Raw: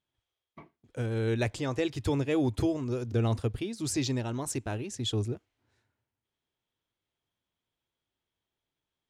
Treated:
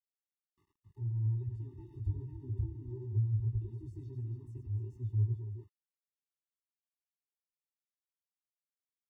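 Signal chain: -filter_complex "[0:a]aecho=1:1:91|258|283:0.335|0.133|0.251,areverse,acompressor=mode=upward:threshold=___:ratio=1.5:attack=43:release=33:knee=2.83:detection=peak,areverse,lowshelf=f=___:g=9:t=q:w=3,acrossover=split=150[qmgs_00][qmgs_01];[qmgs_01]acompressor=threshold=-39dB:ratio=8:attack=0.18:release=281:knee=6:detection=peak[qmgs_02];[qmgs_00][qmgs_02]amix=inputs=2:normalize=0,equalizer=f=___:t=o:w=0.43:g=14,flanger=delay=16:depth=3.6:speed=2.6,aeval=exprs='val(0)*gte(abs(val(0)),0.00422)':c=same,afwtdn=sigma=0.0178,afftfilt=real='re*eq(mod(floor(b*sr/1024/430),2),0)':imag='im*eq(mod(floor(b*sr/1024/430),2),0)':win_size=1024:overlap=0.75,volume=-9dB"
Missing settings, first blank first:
-44dB, 130, 410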